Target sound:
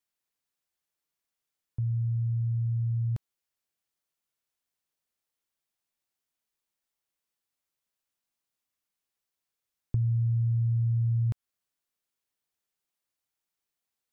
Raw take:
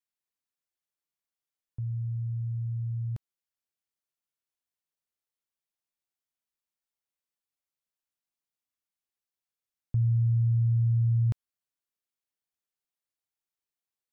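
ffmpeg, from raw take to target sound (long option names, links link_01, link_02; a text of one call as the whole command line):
ffmpeg -i in.wav -af "acompressor=threshold=-29dB:ratio=6,volume=4.5dB" out.wav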